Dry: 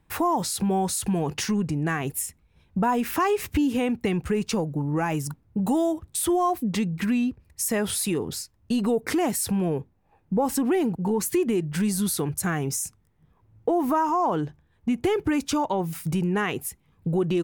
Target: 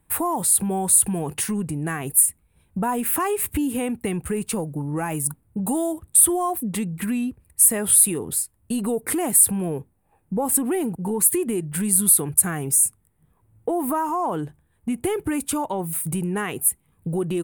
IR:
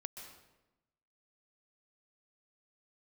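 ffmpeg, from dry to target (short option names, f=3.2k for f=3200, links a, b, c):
-af "highshelf=f=7.4k:t=q:w=3:g=10,volume=-1dB"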